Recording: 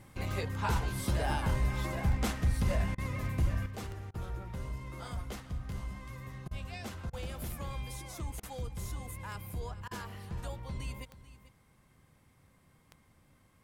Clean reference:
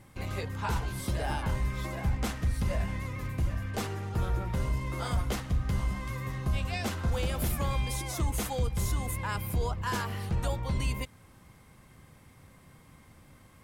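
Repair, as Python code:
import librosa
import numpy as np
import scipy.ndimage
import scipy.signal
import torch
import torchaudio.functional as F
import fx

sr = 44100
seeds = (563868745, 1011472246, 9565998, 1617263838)

y = fx.fix_declick_ar(x, sr, threshold=10.0)
y = fx.fix_interpolate(y, sr, at_s=(2.95, 4.11, 6.48, 7.1, 8.4, 9.88), length_ms=30.0)
y = fx.fix_echo_inverse(y, sr, delay_ms=439, level_db=-16.0)
y = fx.fix_level(y, sr, at_s=3.66, step_db=9.5)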